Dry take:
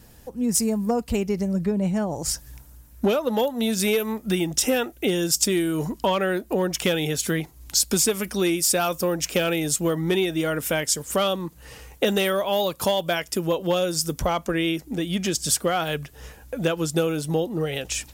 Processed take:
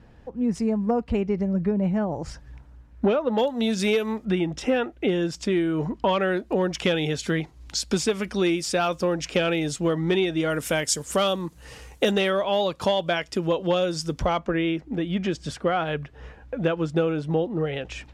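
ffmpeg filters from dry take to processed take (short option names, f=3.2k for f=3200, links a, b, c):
-af "asetnsamples=n=441:p=0,asendcmd='3.38 lowpass f 4900;4.25 lowpass f 2500;6.09 lowpass f 4300;10.5 lowpass f 9000;12.11 lowpass f 4300;14.39 lowpass f 2400',lowpass=2.3k"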